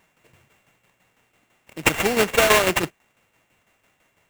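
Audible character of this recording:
a buzz of ramps at a fixed pitch in blocks of 16 samples
tremolo saw down 6 Hz, depth 60%
aliases and images of a low sample rate 4,900 Hz, jitter 20%

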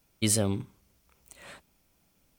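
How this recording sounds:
background noise floor −70 dBFS
spectral slope −4.0 dB per octave

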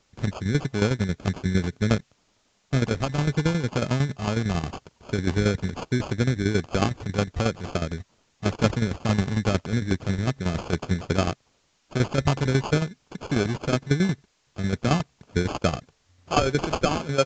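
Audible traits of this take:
aliases and images of a low sample rate 1,900 Hz, jitter 0%
tremolo saw down 11 Hz, depth 70%
a quantiser's noise floor 12 bits, dither triangular
mu-law

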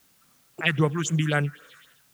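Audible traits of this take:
phaser sweep stages 4, 3.8 Hz, lowest notch 510–4,800 Hz
a quantiser's noise floor 10 bits, dither triangular

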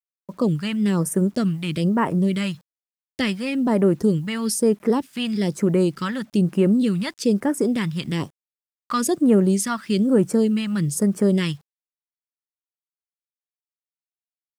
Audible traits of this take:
phaser sweep stages 2, 1.1 Hz, lowest notch 400–4,100 Hz
a quantiser's noise floor 10 bits, dither none

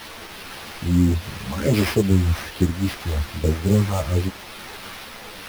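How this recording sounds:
a quantiser's noise floor 6 bits, dither triangular
phaser sweep stages 4, 1.2 Hz, lowest notch 360–3,000 Hz
aliases and images of a low sample rate 7,500 Hz, jitter 20%
a shimmering, thickened sound

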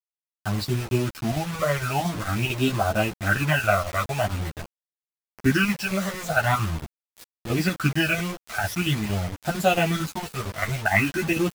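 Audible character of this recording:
chopped level 4.4 Hz, depth 60%, duty 80%
phaser sweep stages 12, 0.45 Hz, lowest notch 260–2,200 Hz
a quantiser's noise floor 6 bits, dither none
a shimmering, thickened sound

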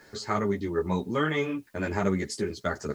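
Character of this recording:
a quantiser's noise floor 12 bits, dither triangular
a shimmering, thickened sound

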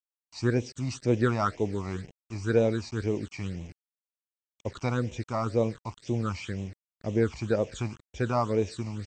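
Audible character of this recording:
a quantiser's noise floor 8 bits, dither none
phaser sweep stages 8, 2 Hz, lowest notch 450–1,400 Hz
MP2

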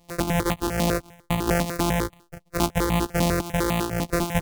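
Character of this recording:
a buzz of ramps at a fixed pitch in blocks of 256 samples
notches that jump at a steady rate 10 Hz 400–1,500 Hz

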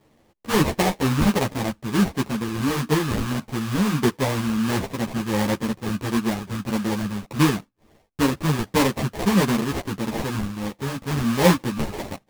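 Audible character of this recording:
phaser sweep stages 12, 1.5 Hz, lowest notch 630–2,300 Hz
aliases and images of a low sample rate 1,400 Hz, jitter 20%
a shimmering, thickened sound

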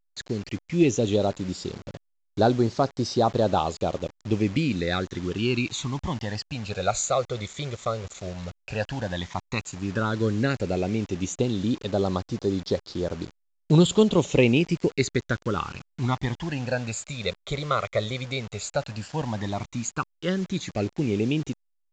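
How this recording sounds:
phaser sweep stages 12, 0.098 Hz, lowest notch 280–2,500 Hz
a quantiser's noise floor 8 bits, dither none
A-law companding

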